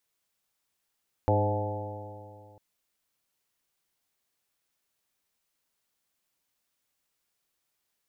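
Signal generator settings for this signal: stretched partials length 1.30 s, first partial 101 Hz, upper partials -13/-7/-9/-2/-7/-8/-4 dB, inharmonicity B 0.0021, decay 2.39 s, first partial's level -23.5 dB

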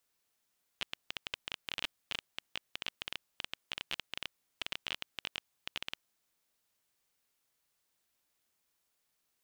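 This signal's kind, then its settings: random clicks 15/s -18.5 dBFS 5.24 s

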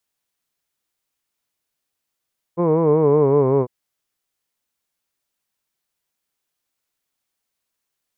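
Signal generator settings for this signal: formant-synthesis vowel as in hood, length 1.10 s, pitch 168 Hz, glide -4.5 st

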